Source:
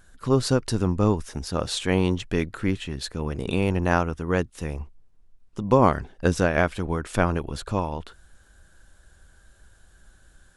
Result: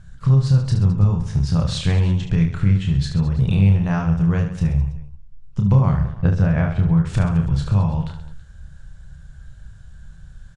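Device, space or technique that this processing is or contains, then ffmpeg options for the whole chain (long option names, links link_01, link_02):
jukebox: -filter_complex "[0:a]lowpass=7400,lowshelf=frequency=210:width_type=q:width=3:gain=12,acompressor=threshold=-15dB:ratio=6,lowpass=frequency=9800:width=0.5412,lowpass=frequency=9800:width=1.3066,asettb=1/sr,asplit=3[link_01][link_02][link_03];[link_01]atrim=end=6.114[link_04];[link_02]atrim=start=6.11:end=7.04,asetpts=PTS-STARTPTS,afade=type=in:duration=0.004:curve=qsin,afade=type=out:start_time=0.926:duration=0.004:curve=qsin,aemphasis=mode=reproduction:type=75fm[link_05];[link_03]atrim=start=7.036[link_06];[link_04][link_05]acrossfade=duration=0.004:curve1=hsin:curve2=qsin[link_07];[link_07][link_06]acrossfade=duration=0.004:curve1=qsin:curve2=hsin,aecho=1:1:30|72|130.8|213.1|328.4:0.631|0.398|0.251|0.158|0.1"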